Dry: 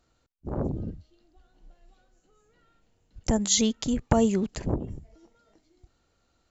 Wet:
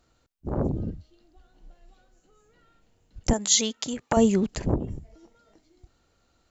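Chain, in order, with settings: 3.33–4.17 HPF 650 Hz 6 dB/oct; gain +3 dB

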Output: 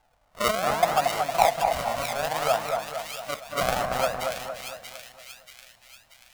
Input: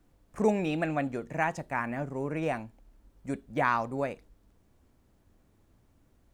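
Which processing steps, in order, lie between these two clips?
wow and flutter 120 cents; decimation with a swept rate 36×, swing 100% 0.65 Hz; resonant low shelf 490 Hz -11.5 dB, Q 3; on a send: split-band echo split 2000 Hz, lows 0.229 s, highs 0.634 s, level -4 dB; on the sum: gain +5 dB

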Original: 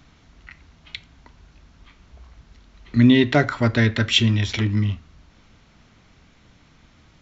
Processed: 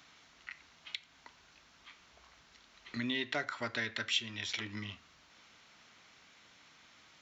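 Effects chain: HPF 1300 Hz 6 dB/oct; compressor 2:1, threshold -41 dBFS, peak gain reduction 15 dB

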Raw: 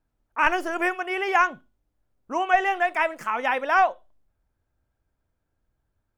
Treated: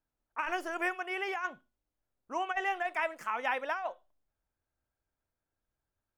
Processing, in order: low shelf 310 Hz -8 dB; negative-ratio compressor -22 dBFS, ratio -0.5; gain -8.5 dB

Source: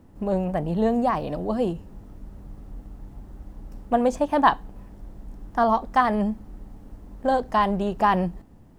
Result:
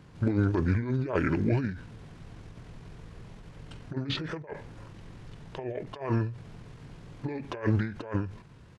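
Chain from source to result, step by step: weighting filter D; negative-ratio compressor -26 dBFS, ratio -0.5; vibrato 8.4 Hz 18 cents; pitch shift -10.5 st; ending taper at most 110 dB/s

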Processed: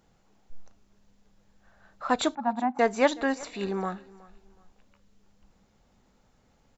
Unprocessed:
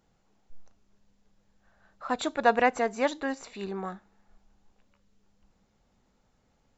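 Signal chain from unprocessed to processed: 2.35–2.79 double band-pass 450 Hz, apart 1.8 oct; feedback echo 0.371 s, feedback 30%, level -22 dB; gain +4.5 dB

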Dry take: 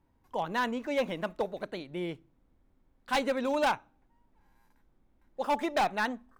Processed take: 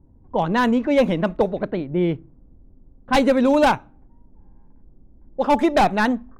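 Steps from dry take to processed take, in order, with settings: low-pass opened by the level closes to 650 Hz, open at -25.5 dBFS; low shelf 420 Hz +12 dB; gain +7.5 dB

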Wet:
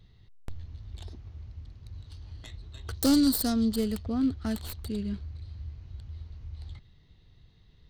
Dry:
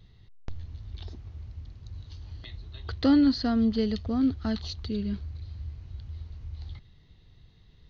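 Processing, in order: tracing distortion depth 0.29 ms; 2.94–3.76 resonant high shelf 3400 Hz +8.5 dB, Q 1.5; gain -2 dB

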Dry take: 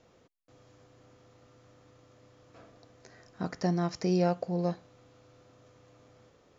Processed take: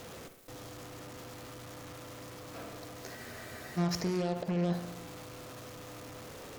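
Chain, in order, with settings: zero-crossing step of -33.5 dBFS; limiter -26.5 dBFS, peak gain reduction 11 dB; added harmonics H 7 -16 dB, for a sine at -26.5 dBFS; on a send: dark delay 63 ms, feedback 66%, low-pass 3500 Hz, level -11 dB; on the sum: spectral freeze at 3.18, 0.59 s; gain +1 dB

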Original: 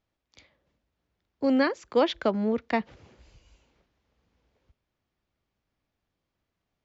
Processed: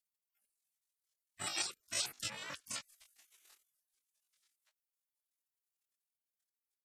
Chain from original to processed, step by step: chorus voices 4, 1.1 Hz, delay 13 ms, depth 4 ms; spectral gate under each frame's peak -30 dB weak; pitch shift +10 st; gain +11 dB

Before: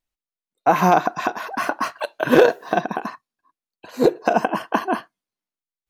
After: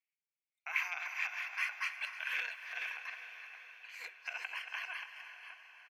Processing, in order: reverse delay 0.326 s, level -10.5 dB; diffused feedback echo 0.49 s, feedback 54%, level -13.5 dB; limiter -10 dBFS, peak gain reduction 7 dB; ladder high-pass 2100 Hz, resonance 75%; tilt -3 dB/oct; notch 3800 Hz, Q 5.9; echo 0.308 s -15 dB; gain +4.5 dB

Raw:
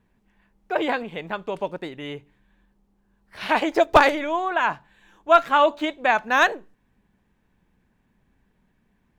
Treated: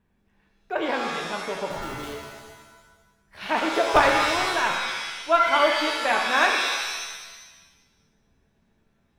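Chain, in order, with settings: 1.7–2.13 Schmitt trigger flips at -48 dBFS; shimmer reverb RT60 1.2 s, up +7 st, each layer -2 dB, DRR 2.5 dB; gain -4.5 dB

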